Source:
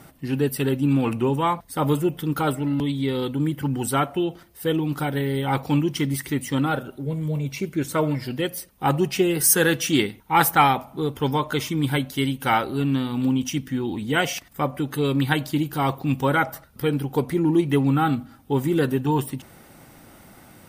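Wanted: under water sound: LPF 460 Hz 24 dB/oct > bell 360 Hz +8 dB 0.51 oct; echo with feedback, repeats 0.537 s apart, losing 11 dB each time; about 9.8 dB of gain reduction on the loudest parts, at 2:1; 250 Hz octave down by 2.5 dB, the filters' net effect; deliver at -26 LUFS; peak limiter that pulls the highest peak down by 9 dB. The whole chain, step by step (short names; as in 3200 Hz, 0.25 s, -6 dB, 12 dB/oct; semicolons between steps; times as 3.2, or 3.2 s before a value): bell 250 Hz -9 dB; compressor 2:1, threshold -31 dBFS; limiter -22 dBFS; LPF 460 Hz 24 dB/oct; bell 360 Hz +8 dB 0.51 oct; feedback echo 0.537 s, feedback 28%, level -11 dB; gain +6 dB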